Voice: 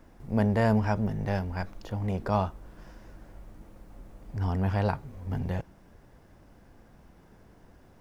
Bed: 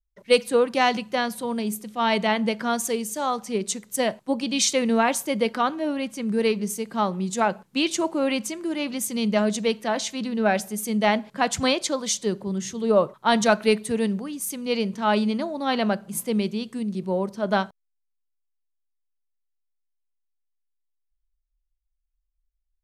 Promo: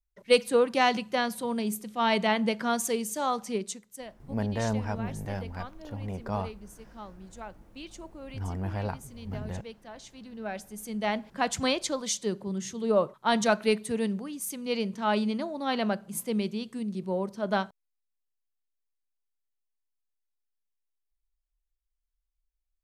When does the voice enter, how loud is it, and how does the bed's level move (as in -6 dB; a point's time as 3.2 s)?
4.00 s, -5.5 dB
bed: 3.5 s -3 dB
4.08 s -20.5 dB
9.94 s -20.5 dB
11.4 s -5 dB